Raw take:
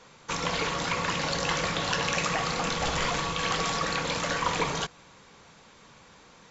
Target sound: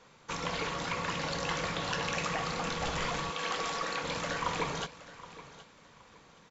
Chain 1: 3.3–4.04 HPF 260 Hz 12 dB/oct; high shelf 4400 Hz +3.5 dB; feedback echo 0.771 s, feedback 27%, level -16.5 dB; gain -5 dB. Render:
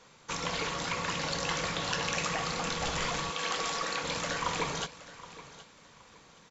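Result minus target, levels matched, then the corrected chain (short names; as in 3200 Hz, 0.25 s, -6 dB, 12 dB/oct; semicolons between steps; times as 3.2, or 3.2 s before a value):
8000 Hz band +3.5 dB
3.3–4.04 HPF 260 Hz 12 dB/oct; high shelf 4400 Hz -4 dB; feedback echo 0.771 s, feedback 27%, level -16.5 dB; gain -5 dB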